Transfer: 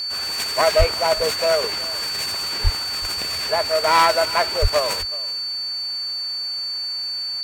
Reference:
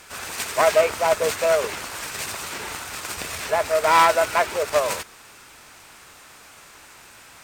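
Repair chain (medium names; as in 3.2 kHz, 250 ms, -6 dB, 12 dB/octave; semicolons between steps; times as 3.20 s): clip repair -6 dBFS; band-stop 4.5 kHz, Q 30; 0.78–0.90 s: high-pass 140 Hz 24 dB/octave; 2.63–2.75 s: high-pass 140 Hz 24 dB/octave; 4.61–4.73 s: high-pass 140 Hz 24 dB/octave; inverse comb 376 ms -20 dB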